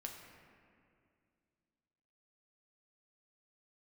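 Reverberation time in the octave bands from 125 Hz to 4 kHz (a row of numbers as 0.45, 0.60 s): 2.8, 2.9, 2.5, 2.1, 2.1, 1.4 s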